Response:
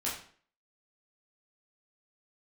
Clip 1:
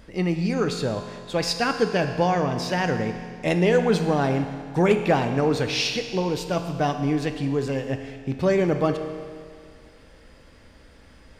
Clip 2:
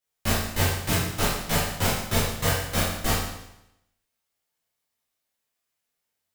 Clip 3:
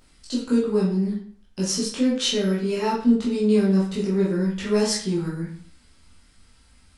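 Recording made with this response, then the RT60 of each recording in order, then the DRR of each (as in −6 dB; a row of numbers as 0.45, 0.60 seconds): 3; 2.1, 0.85, 0.50 seconds; 6.5, −9.0, −7.0 decibels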